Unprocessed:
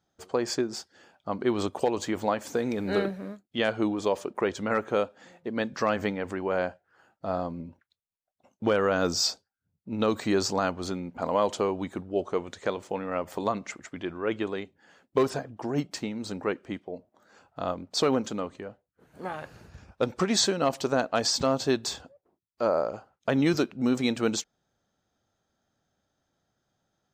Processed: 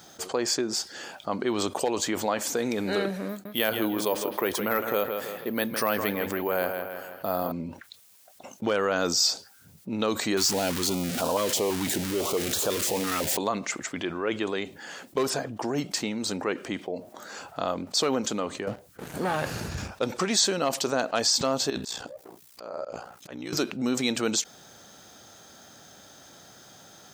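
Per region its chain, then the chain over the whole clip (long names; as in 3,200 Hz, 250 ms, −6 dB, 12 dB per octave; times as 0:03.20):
0:03.29–0:07.52: bucket-brigade delay 161 ms, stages 4,096, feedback 32%, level −11 dB + bad sample-rate conversion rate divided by 3×, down filtered, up hold
0:10.37–0:13.37: converter with a step at zero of −28.5 dBFS + notch on a step sequencer 6 Hz 570–2,000 Hz
0:18.67–0:19.88: low-shelf EQ 250 Hz +8.5 dB + leveller curve on the samples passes 2
0:21.70–0:23.53: compressor whose output falls as the input rises −31 dBFS + ring modulation 30 Hz + volume swells 417 ms
whole clip: high-pass filter 190 Hz 6 dB per octave; high-shelf EQ 3,600 Hz +9.5 dB; envelope flattener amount 50%; level −5 dB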